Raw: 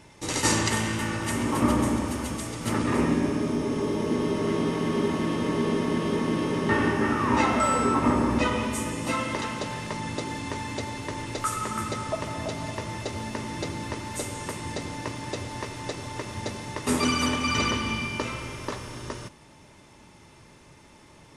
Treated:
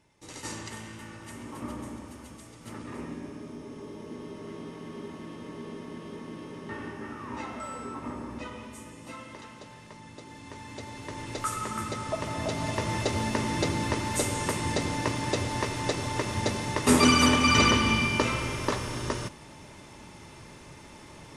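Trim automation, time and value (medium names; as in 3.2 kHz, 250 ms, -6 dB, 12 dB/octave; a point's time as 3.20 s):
10.16 s -15 dB
11.35 s -3 dB
11.98 s -3 dB
12.95 s +4.5 dB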